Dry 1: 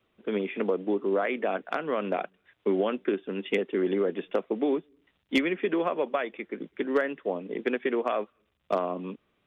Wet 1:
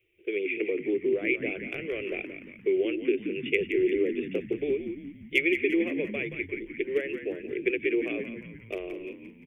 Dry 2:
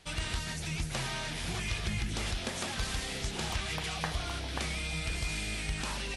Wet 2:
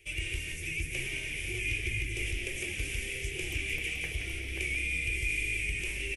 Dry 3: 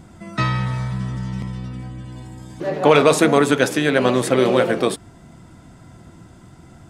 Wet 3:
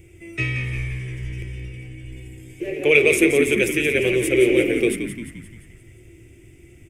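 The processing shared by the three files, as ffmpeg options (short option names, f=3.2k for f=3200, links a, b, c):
-filter_complex "[0:a]firequalizer=gain_entry='entry(110,0);entry(240,-29);entry(340,6);entry(670,-16);entry(980,-24);entry(1400,-19);entry(2300,11);entry(4000,-12);entry(7200,-26);entry(13000,-23)':delay=0.05:min_phase=1,aexciter=amount=12.7:drive=8.3:freq=6.4k,asplit=2[a][b];[b]asplit=6[c][d][e][f][g][h];[c]adelay=174,afreqshift=-61,volume=-8.5dB[i];[d]adelay=348,afreqshift=-122,volume=-14dB[j];[e]adelay=522,afreqshift=-183,volume=-19.5dB[k];[f]adelay=696,afreqshift=-244,volume=-25dB[l];[g]adelay=870,afreqshift=-305,volume=-30.6dB[m];[h]adelay=1044,afreqshift=-366,volume=-36.1dB[n];[i][j][k][l][m][n]amix=inputs=6:normalize=0[o];[a][o]amix=inputs=2:normalize=0,volume=-1dB"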